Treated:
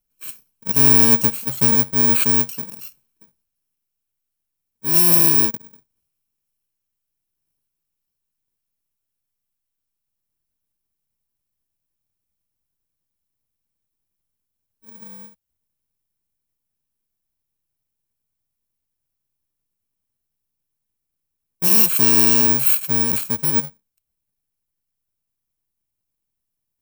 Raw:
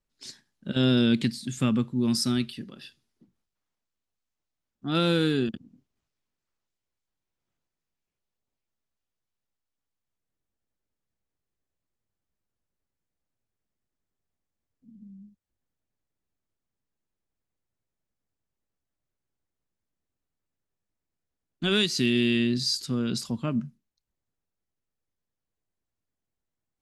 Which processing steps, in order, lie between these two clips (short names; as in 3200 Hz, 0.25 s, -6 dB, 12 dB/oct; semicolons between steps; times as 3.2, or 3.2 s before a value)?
FFT order left unsorted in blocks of 64 samples; high shelf 10000 Hz +11.5 dB; gain +2.5 dB